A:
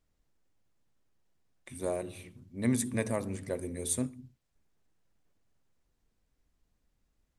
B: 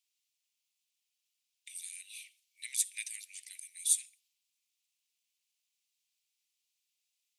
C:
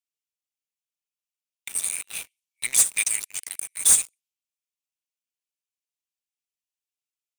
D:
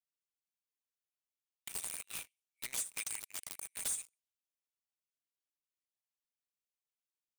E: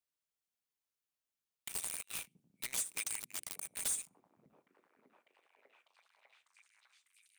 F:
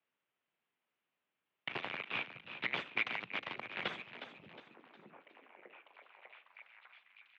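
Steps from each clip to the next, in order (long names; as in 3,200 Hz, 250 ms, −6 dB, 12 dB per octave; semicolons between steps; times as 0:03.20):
Butterworth high-pass 2,400 Hz 48 dB per octave; level +5 dB
dynamic equaliser 7,200 Hz, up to +5 dB, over −44 dBFS, Q 1.5; leveller curve on the samples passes 5; parametric band 4,100 Hz −5.5 dB 0.84 octaves
downward compressor 6 to 1, threshold −28 dBFS, peak gain reduction 13.5 dB; wrap-around overflow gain 22.5 dB; level −8 dB
echo through a band-pass that steps 599 ms, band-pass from 180 Hz, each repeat 0.7 octaves, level −6 dB; level +1 dB
tape wow and flutter 22 cents; single-sideband voice off tune −52 Hz 190–3,100 Hz; echo with shifted repeats 361 ms, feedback 39%, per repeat +67 Hz, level −10.5 dB; level +11 dB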